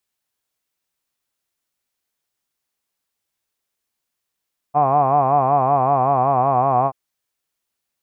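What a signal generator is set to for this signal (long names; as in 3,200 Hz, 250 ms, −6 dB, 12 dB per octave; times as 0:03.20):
vowel by formant synthesis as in hod, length 2.18 s, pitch 141 Hz, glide −1.5 semitones, vibrato depth 1.1 semitones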